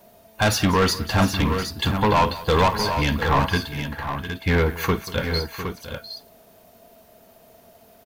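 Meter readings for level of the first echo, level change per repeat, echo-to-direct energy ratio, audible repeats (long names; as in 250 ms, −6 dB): −16.0 dB, repeats not evenly spaced, −6.0 dB, 4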